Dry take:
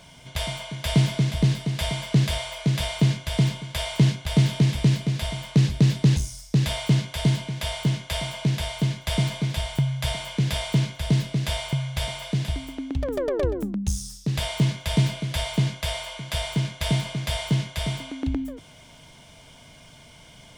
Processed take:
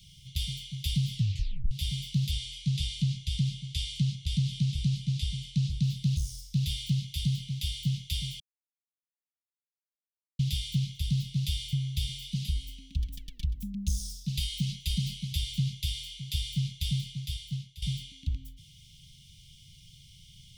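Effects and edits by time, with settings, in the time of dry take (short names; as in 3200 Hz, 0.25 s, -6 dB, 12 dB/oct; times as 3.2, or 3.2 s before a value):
1.15 tape stop 0.56 s
2.31–5.83 LPF 10000 Hz 24 dB/oct
8.4–10.39 mute
12.31–15.32 comb 4.4 ms
16.68–17.82 fade out, to -16 dB
whole clip: graphic EQ 250/500/8000 Hz -9/-8/-7 dB; compressor, threshold -23 dBFS; inverse Chebyshev band-stop 390–1500 Hz, stop band 50 dB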